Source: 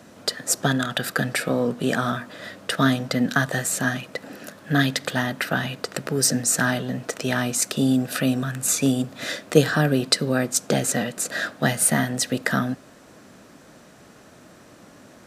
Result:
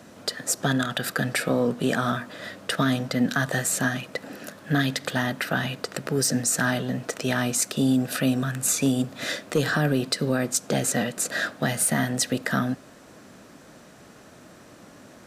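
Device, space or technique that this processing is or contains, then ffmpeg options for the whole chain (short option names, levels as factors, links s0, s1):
soft clipper into limiter: -af "asoftclip=type=tanh:threshold=0.531,alimiter=limit=0.224:level=0:latency=1:release=107"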